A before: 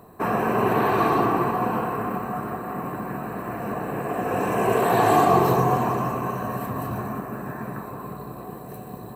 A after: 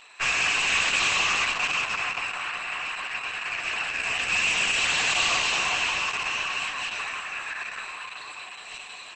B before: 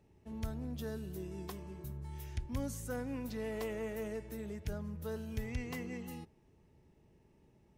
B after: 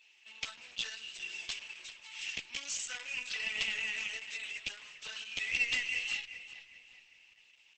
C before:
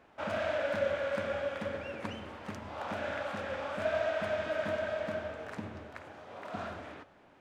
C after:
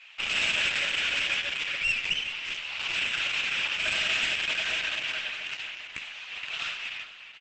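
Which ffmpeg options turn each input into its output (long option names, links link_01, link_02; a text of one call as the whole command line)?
ffmpeg -i in.wav -filter_complex "[0:a]highpass=frequency=2700:width_type=q:width=4.9,flanger=delay=6.3:depth=9.9:regen=1:speed=0.6:shape=triangular,aeval=exprs='0.126*(cos(1*acos(clip(val(0)/0.126,-1,1)))-cos(1*PI/2))+0.0398*(cos(2*acos(clip(val(0)/0.126,-1,1)))-cos(2*PI/2))+0.00794*(cos(3*acos(clip(val(0)/0.126,-1,1)))-cos(3*PI/2))+0.00631*(cos(4*acos(clip(val(0)/0.126,-1,1)))-cos(4*PI/2))+0.0631*(cos(5*acos(clip(val(0)/0.126,-1,1)))-cos(5*PI/2))':channel_layout=same,asplit=2[link_01][link_02];[link_02]asoftclip=type=hard:threshold=-25.5dB,volume=-7dB[link_03];[link_01][link_03]amix=inputs=2:normalize=0,aeval=exprs='0.251*(cos(1*acos(clip(val(0)/0.251,-1,1)))-cos(1*PI/2))+0.00282*(cos(2*acos(clip(val(0)/0.251,-1,1)))-cos(2*PI/2))+0.00708*(cos(4*acos(clip(val(0)/0.251,-1,1)))-cos(4*PI/2))+0.112*(cos(5*acos(clip(val(0)/0.251,-1,1)))-cos(5*PI/2))+0.0398*(cos(6*acos(clip(val(0)/0.251,-1,1)))-cos(6*PI/2))':channel_layout=same,asplit=2[link_04][link_05];[link_05]adelay=397,lowpass=frequency=4900:poles=1,volume=-12.5dB,asplit=2[link_06][link_07];[link_07]adelay=397,lowpass=frequency=4900:poles=1,volume=0.43,asplit=2[link_08][link_09];[link_09]adelay=397,lowpass=frequency=4900:poles=1,volume=0.43,asplit=2[link_10][link_11];[link_11]adelay=397,lowpass=frequency=4900:poles=1,volume=0.43[link_12];[link_06][link_08][link_10][link_12]amix=inputs=4:normalize=0[link_13];[link_04][link_13]amix=inputs=2:normalize=0,aresample=22050,aresample=44100,volume=-7.5dB" -ar 48000 -c:a libopus -b:a 10k out.opus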